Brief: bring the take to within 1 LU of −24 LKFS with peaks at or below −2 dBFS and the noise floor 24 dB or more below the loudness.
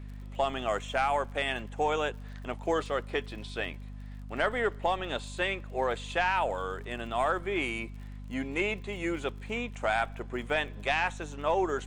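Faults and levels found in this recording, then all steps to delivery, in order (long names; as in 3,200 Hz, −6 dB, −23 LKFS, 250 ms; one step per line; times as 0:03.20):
crackle rate 50 per second; mains hum 50 Hz; hum harmonics up to 250 Hz; level of the hum −40 dBFS; integrated loudness −31.5 LKFS; sample peak −15.0 dBFS; target loudness −24.0 LKFS
→ click removal
hum removal 50 Hz, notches 5
level +7.5 dB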